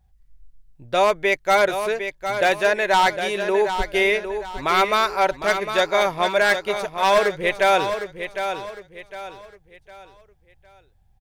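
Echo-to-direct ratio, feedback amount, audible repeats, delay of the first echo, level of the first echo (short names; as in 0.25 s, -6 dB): -8.0 dB, 35%, 3, 0.757 s, -8.5 dB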